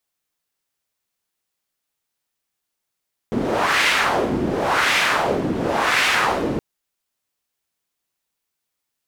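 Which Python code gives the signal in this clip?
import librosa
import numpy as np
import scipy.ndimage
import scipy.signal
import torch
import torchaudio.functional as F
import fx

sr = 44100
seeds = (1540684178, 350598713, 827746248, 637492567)

y = fx.wind(sr, seeds[0], length_s=3.27, low_hz=270.0, high_hz=2200.0, q=1.5, gusts=3, swing_db=5.0)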